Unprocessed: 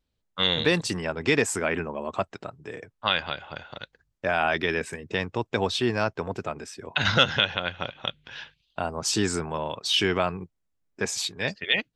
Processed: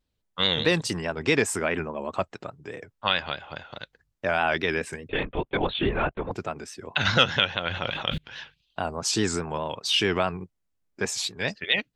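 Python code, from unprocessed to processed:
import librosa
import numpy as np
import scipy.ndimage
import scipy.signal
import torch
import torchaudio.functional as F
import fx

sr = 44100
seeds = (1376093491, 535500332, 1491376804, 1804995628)

y = fx.vibrato(x, sr, rate_hz=4.8, depth_cents=75.0)
y = fx.lpc_vocoder(y, sr, seeds[0], excitation='whisper', order=16, at=(5.09, 6.31))
y = fx.sustainer(y, sr, db_per_s=29.0, at=(7.68, 8.18))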